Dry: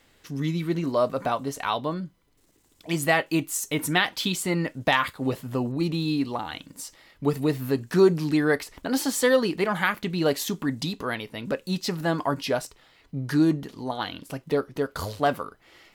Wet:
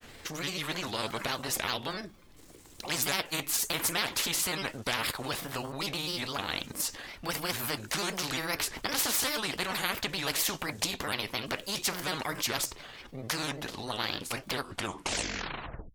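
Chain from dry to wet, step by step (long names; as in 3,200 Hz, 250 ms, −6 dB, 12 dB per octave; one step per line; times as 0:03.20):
turntable brake at the end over 1.43 s
granular cloud, spray 13 ms, pitch spread up and down by 3 semitones
every bin compressed towards the loudest bin 4 to 1
level −4.5 dB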